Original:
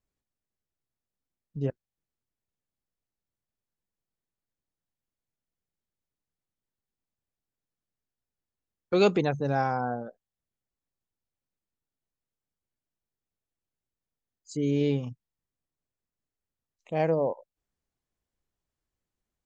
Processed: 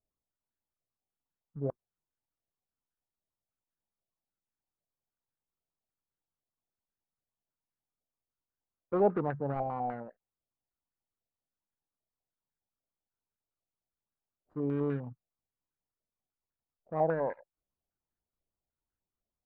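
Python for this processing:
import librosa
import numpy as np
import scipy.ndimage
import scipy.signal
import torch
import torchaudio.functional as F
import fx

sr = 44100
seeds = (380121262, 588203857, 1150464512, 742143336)

y = scipy.ndimage.median_filter(x, 41, mode='constant')
y = fx.filter_held_lowpass(y, sr, hz=10.0, low_hz=670.0, high_hz=1600.0)
y = y * librosa.db_to_amplitude(-6.5)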